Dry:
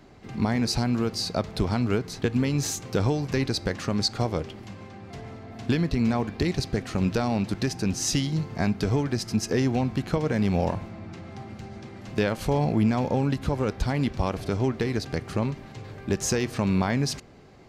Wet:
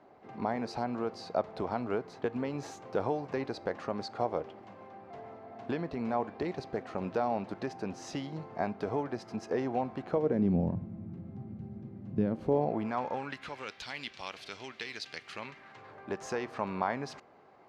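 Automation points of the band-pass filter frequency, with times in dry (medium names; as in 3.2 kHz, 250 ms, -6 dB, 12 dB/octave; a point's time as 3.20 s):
band-pass filter, Q 1.3
10.05 s 730 Hz
10.68 s 170 Hz
12.18 s 170 Hz
12.86 s 910 Hz
13.74 s 3.1 kHz
15.23 s 3.1 kHz
15.98 s 920 Hz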